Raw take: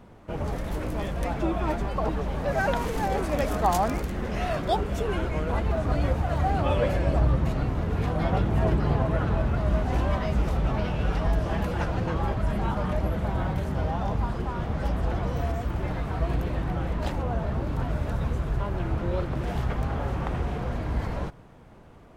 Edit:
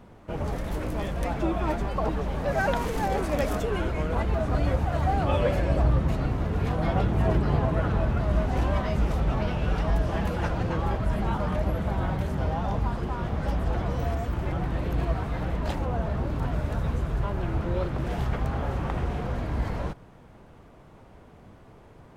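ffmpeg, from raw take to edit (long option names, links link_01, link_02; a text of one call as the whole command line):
ffmpeg -i in.wav -filter_complex "[0:a]asplit=4[link_01][link_02][link_03][link_04];[link_01]atrim=end=3.602[link_05];[link_02]atrim=start=4.968:end=15.892[link_06];[link_03]atrim=start=15.888:end=16.822,asetpts=PTS-STARTPTS,areverse[link_07];[link_04]atrim=start=16.818[link_08];[link_05][link_06]acrossfade=duration=0.004:curve1=hsin:curve2=hsin[link_09];[link_09][link_07]acrossfade=duration=0.004:curve1=hsin:curve2=hsin[link_10];[link_10][link_08]acrossfade=duration=0.004:curve1=hsin:curve2=hsin" out.wav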